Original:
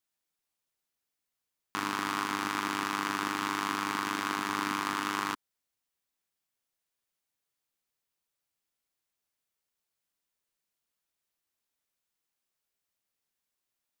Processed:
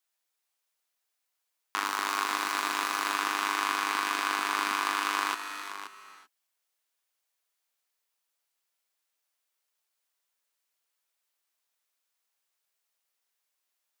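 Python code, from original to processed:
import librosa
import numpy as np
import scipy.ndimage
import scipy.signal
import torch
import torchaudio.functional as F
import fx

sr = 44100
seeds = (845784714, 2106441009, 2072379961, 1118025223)

y = fx.dead_time(x, sr, dead_ms=0.081, at=(1.85, 3.15))
y = scipy.signal.sosfilt(scipy.signal.butter(2, 530.0, 'highpass', fs=sr, output='sos'), y)
y = y + 10.0 ** (-11.0 / 20.0) * np.pad(y, (int(526 * sr / 1000.0), 0))[:len(y)]
y = fx.rev_gated(y, sr, seeds[0], gate_ms=410, shape='rising', drr_db=9.5)
y = y * librosa.db_to_amplitude(3.5)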